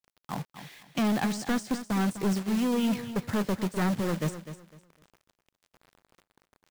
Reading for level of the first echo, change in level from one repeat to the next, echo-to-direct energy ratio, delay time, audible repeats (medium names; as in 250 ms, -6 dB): -12.0 dB, -12.0 dB, -11.5 dB, 252 ms, 2